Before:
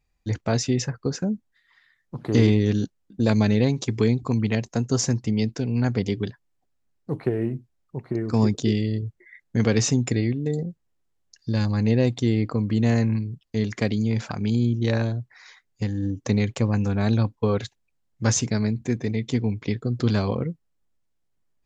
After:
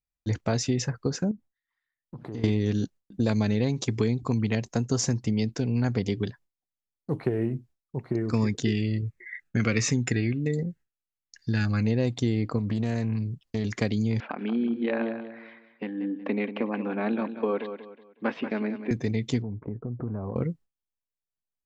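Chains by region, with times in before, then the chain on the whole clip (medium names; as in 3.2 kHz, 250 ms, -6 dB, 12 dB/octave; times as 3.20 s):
1.31–2.44 s: treble shelf 2.3 kHz -8 dB + compression 3:1, threshold -37 dBFS
8.33–11.85 s: high-order bell 1.8 kHz +10 dB 1.3 oct + Shepard-style phaser falling 1.4 Hz
12.58–13.65 s: compression 4:1, threshold -22 dBFS + loudspeaker Doppler distortion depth 0.18 ms
14.20–18.91 s: elliptic band-pass 240–2800 Hz + feedback delay 185 ms, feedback 33%, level -11 dB
19.42–20.36 s: inverse Chebyshev low-pass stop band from 4.9 kHz, stop band 70 dB + compression 3:1, threshold -31 dBFS
whole clip: gate with hold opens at -51 dBFS; compression 2.5:1, threshold -22 dBFS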